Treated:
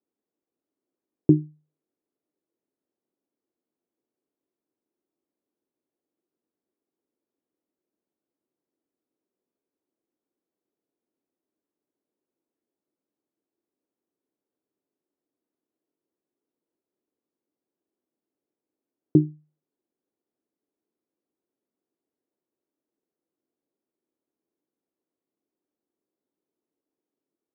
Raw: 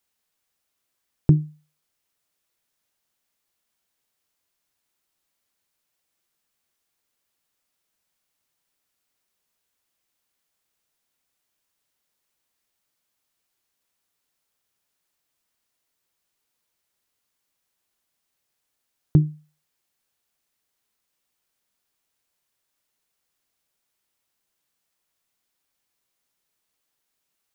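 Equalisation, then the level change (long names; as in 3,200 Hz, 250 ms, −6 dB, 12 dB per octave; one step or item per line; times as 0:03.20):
resonant band-pass 350 Hz, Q 1.2
high-frequency loss of the air 410 metres
parametric band 310 Hz +10.5 dB 1.2 octaves
0.0 dB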